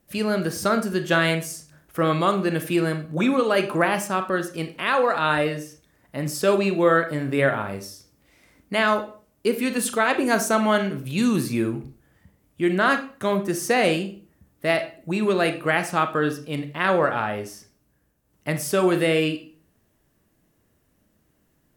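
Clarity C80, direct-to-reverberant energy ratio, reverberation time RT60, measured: 16.5 dB, 7.5 dB, 0.40 s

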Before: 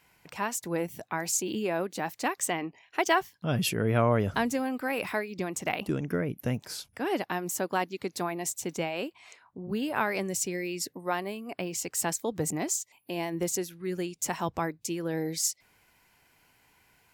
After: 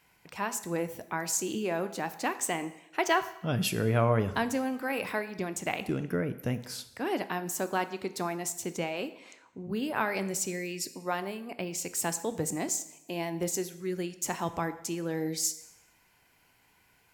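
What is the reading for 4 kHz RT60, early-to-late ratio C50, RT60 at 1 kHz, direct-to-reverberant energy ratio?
0.80 s, 14.0 dB, 0.85 s, 11.0 dB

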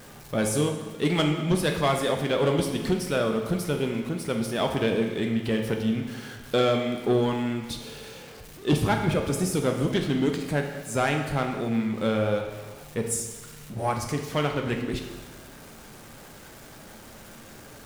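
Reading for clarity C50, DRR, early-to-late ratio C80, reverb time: 5.5 dB, 3.0 dB, 7.5 dB, 1.3 s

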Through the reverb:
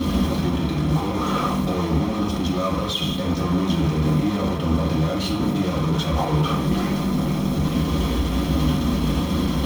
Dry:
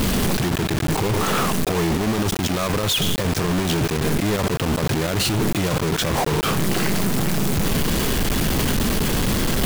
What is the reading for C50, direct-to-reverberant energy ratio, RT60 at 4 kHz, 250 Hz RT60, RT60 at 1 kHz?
6.0 dB, -6.5 dB, 0.65 s, 0.60 s, 0.60 s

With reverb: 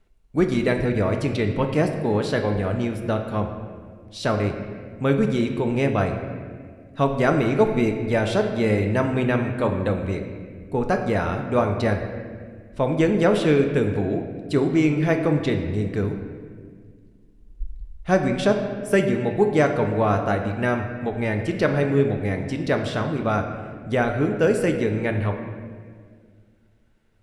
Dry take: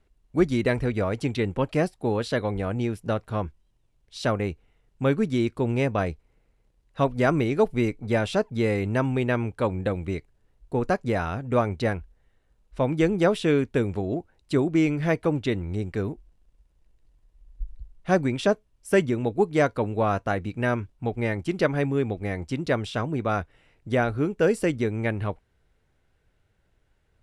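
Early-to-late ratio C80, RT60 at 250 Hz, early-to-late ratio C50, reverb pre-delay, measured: 8.0 dB, 2.5 s, 6.5 dB, 4 ms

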